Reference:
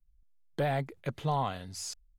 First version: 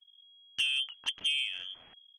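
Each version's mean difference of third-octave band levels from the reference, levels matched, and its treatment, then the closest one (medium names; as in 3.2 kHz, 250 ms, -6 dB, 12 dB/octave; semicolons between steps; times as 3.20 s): 17.5 dB: low-pass that closes with the level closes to 580 Hz, closed at -27 dBFS; frequency inversion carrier 3.3 kHz; transformer saturation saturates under 3 kHz; trim +1.5 dB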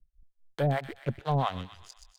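6.0 dB: local Wiener filter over 41 samples; harmonic tremolo 4.4 Hz, depth 100%, crossover 620 Hz; on a send: feedback echo behind a high-pass 126 ms, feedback 49%, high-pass 1.9 kHz, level -6 dB; on the sum: trim +9 dB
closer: second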